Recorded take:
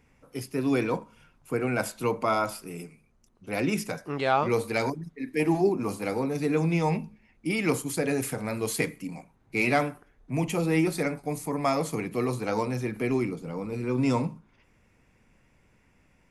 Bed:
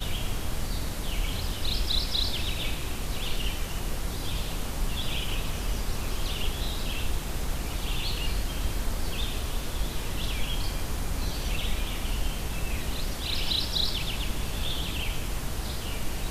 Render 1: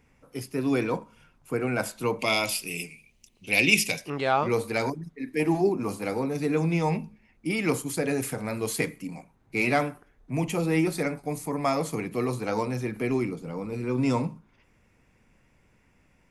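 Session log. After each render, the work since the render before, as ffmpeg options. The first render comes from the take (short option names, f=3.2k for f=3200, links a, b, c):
-filter_complex "[0:a]asettb=1/sr,asplit=3[a][b][c];[a]atrim=end=2.194[d];[b]atrim=start=2.19:end=4.1,asetpts=PTS-STARTPTS,afade=t=in:d=0.004:c=qsin,afade=t=out:st=1.906:d=0.004:c=qsin,highshelf=f=1.9k:t=q:w=3:g=10.5[e];[c]atrim=start=4.096[f];[d][e]acrossfade=d=0.004:c1=hsin:c2=qsin[g];[g][f]acrossfade=d=0.004:c1=qsin:c2=hsin"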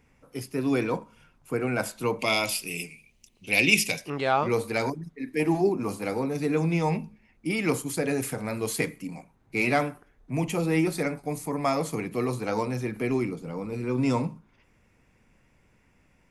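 -af anull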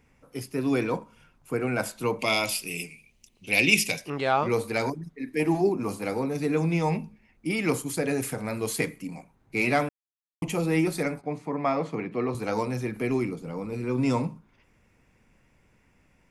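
-filter_complex "[0:a]asettb=1/sr,asplit=3[a][b][c];[a]atrim=end=11.214[d];[b]atrim=start=11.21:end=12.35,asetpts=PTS-STARTPTS,afade=t=in:d=0.004:c=qsin,afade=t=out:st=1.136:d=0.004:c=qsin,highpass=130,lowpass=2.8k[e];[c]atrim=start=12.346[f];[d][e]acrossfade=d=0.004:c1=hsin:c2=qsin[g];[g][f]acrossfade=d=0.004:c1=qsin:c2=hsin,asplit=3[h][i][j];[h]atrim=end=9.89,asetpts=PTS-STARTPTS,afade=t=out:st=9.886:d=0.004:c=hsin[k];[i]atrim=start=9.89:end=10.42,asetpts=PTS-STARTPTS,volume=0[l];[j]atrim=start=10.42,asetpts=PTS-STARTPTS,afade=t=in:d=0.004:c=hsin[m];[k][l][m]concat=n=3:v=0:a=1"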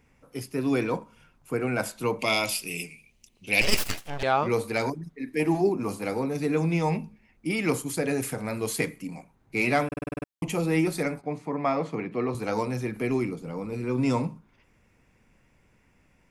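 -filter_complex "[0:a]asettb=1/sr,asplit=3[a][b][c];[a]atrim=end=3.614[d];[b]atrim=start=3.61:end=4.23,asetpts=PTS-STARTPTS,afade=t=in:d=0.004:c=qsin,afade=t=out:st=0.616:d=0.004:c=qsin,aeval=exprs='abs(val(0))':c=same[e];[c]atrim=start=4.226[f];[d][e]acrossfade=d=0.004:c1=hsin:c2=qsin[g];[g][f]acrossfade=d=0.004:c1=qsin:c2=hsin,asplit=9[h][i][j][k][l][m][n][o][p];[h]atrim=end=9.922[q];[i]atrim=start=9.868:end=9.922[r];[j]atrim=start=9.868:end=9.922[s];[k]atrim=start=9.868:end=9.922[t];[l]atrim=start=9.868:end=9.922[u];[m]atrim=start=9.868:end=9.922[v];[n]atrim=start=9.868:end=9.922[w];[o]atrim=start=9.868:end=9.922[x];[p]atrim=start=10.268[y];[q][r]acrossfade=d=0.004:c1=hsin:c2=hsin[z];[z][s]acrossfade=d=0.004:c1=hsin:c2=hsin[aa];[aa][t]acrossfade=d=0.004:c1=hsin:c2=hsin[ab];[ab][u]acrossfade=d=0.004:c1=hsin:c2=hsin[ac];[ac][v]acrossfade=d=0.004:c1=hsin:c2=hsin[ad];[ad][w]acrossfade=d=0.004:c1=hsin:c2=hsin[ae];[ae][x]acrossfade=d=0.004:c1=hsin:c2=hsin[af];[af][y]acrossfade=d=0.004:c1=hsin:c2=hsin"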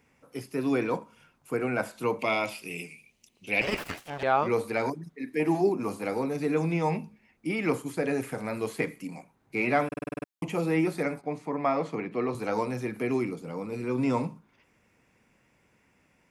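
-filter_complex "[0:a]acrossover=split=2600[a][b];[b]acompressor=threshold=-46dB:ratio=4:attack=1:release=60[c];[a][c]amix=inputs=2:normalize=0,highpass=f=180:p=1"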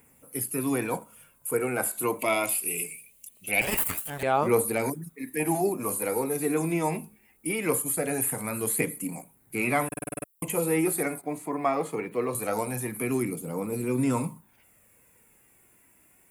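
-af "aexciter=amount=11.7:drive=6.1:freq=8k,aphaser=in_gain=1:out_gain=1:delay=3.1:decay=0.37:speed=0.22:type=triangular"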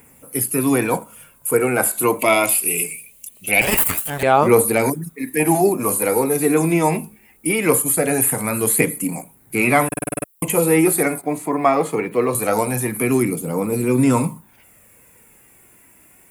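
-af "volume=10dB,alimiter=limit=-2dB:level=0:latency=1"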